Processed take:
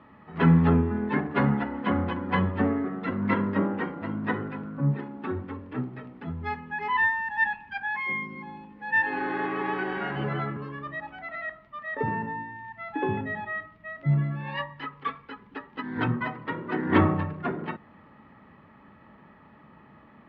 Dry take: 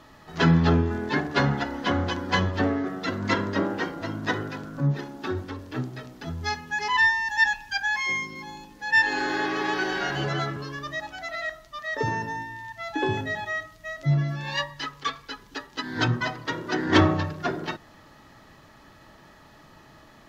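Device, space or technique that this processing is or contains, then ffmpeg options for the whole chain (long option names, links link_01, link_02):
bass cabinet: -af "highpass=77,equalizer=frequency=120:width_type=q:width=4:gain=-4,equalizer=frequency=210:width_type=q:width=4:gain=7,equalizer=frequency=330:width_type=q:width=4:gain=-4,equalizer=frequency=660:width_type=q:width=4:gain=-6,equalizer=frequency=1600:width_type=q:width=4:gain=-6,lowpass=frequency=2300:width=0.5412,lowpass=frequency=2300:width=1.3066"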